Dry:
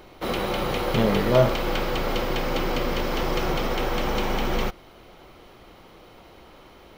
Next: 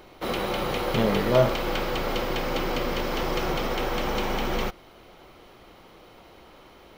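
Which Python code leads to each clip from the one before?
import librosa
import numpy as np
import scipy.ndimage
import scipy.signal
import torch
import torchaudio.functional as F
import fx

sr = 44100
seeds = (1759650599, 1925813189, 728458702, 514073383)

y = fx.low_shelf(x, sr, hz=180.0, db=-3.0)
y = F.gain(torch.from_numpy(y), -1.0).numpy()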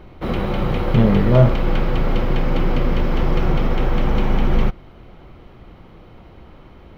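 y = fx.bass_treble(x, sr, bass_db=14, treble_db=-13)
y = F.gain(torch.from_numpy(y), 1.5).numpy()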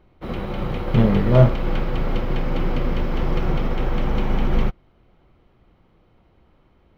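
y = fx.upward_expand(x, sr, threshold_db=-37.0, expansion=1.5)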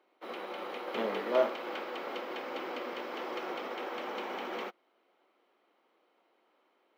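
y = scipy.signal.sosfilt(scipy.signal.bessel(8, 490.0, 'highpass', norm='mag', fs=sr, output='sos'), x)
y = F.gain(torch.from_numpy(y), -6.0).numpy()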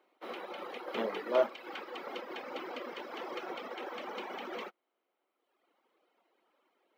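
y = fx.dereverb_blind(x, sr, rt60_s=1.4)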